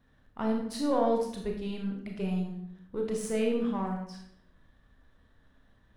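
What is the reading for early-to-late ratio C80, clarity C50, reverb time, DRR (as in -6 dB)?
7.0 dB, 4.0 dB, 0.70 s, 0.5 dB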